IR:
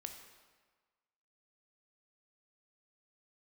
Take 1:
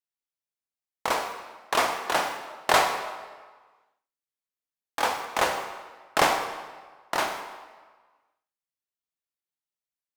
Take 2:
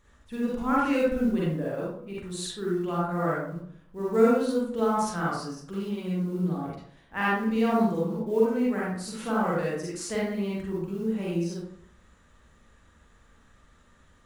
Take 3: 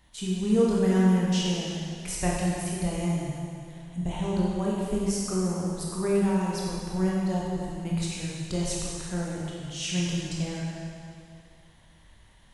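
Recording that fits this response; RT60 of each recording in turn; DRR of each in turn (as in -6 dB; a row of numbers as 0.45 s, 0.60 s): 1; 1.4 s, 0.60 s, 2.4 s; 4.5 dB, -7.0 dB, -4.5 dB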